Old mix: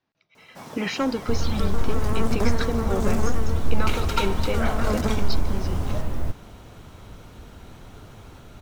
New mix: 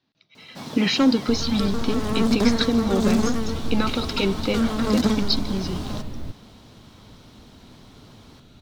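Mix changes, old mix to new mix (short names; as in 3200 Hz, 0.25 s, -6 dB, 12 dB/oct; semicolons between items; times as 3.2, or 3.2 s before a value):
second sound -9.5 dB; master: add graphic EQ 125/250/4000 Hz +5/+8/+12 dB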